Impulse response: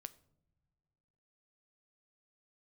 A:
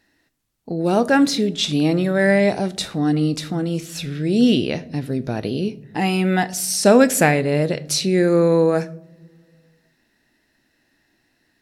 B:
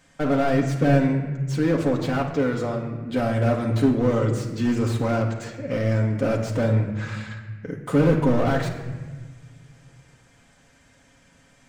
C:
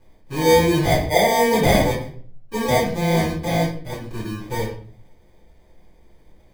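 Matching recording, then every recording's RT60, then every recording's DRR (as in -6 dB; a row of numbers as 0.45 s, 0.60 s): A; no single decay rate, 1.5 s, 0.50 s; 13.0 dB, -1.0 dB, -10.5 dB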